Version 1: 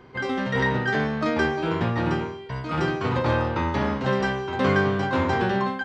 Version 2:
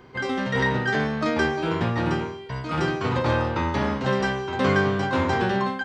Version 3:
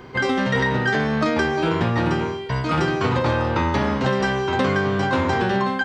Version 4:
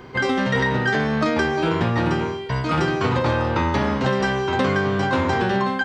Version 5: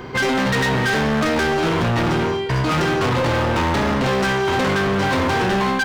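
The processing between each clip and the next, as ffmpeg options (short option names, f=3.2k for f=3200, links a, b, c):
-af "highshelf=f=6.2k:g=7.5"
-af "acompressor=threshold=-25dB:ratio=6,volume=8dB"
-af anull
-af "volume=24.5dB,asoftclip=hard,volume=-24.5dB,volume=7.5dB"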